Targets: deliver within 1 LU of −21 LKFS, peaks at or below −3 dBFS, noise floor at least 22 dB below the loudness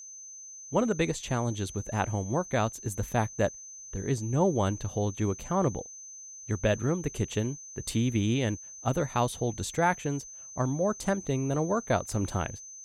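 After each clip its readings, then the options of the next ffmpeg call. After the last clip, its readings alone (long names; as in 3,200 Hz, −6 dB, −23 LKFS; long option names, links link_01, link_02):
interfering tone 6,200 Hz; level of the tone −43 dBFS; integrated loudness −30.0 LKFS; sample peak −13.0 dBFS; target loudness −21.0 LKFS
→ -af "bandreject=frequency=6200:width=30"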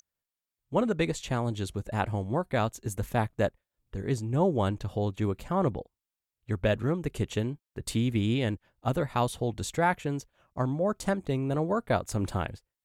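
interfering tone none found; integrated loudness −30.0 LKFS; sample peak −13.0 dBFS; target loudness −21.0 LKFS
→ -af "volume=9dB"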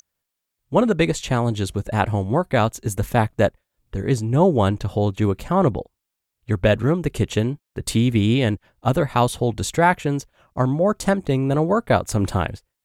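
integrated loudness −21.0 LKFS; sample peak −4.0 dBFS; background noise floor −82 dBFS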